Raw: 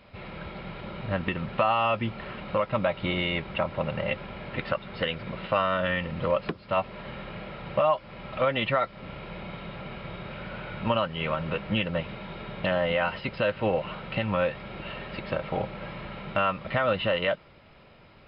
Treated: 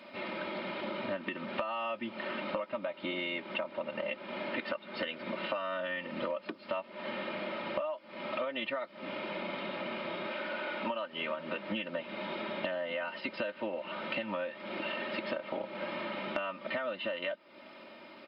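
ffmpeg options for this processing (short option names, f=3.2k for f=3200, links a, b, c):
-filter_complex "[0:a]asettb=1/sr,asplit=3[a][b][c];[a]atrim=end=10.284[d];[b]atrim=start=10.28:end=11.13,asetpts=PTS-STARTPTS,afade=t=in:d=0.004:c=qsin,afade=t=out:st=0.846:d=0.004:c=qsin,equalizer=f=140:w=1.5:g=-12.5[e];[c]atrim=start=11.126[f];[d][e]acrossfade=d=0.004:c1=hsin:c2=qsin[g];[g][f]acrossfade=d=0.004:c1=qsin:c2=hsin,highpass=f=190:w=0.5412,highpass=f=190:w=1.3066,aecho=1:1:3.3:0.69,acompressor=threshold=-35dB:ratio=12,volume=2.5dB"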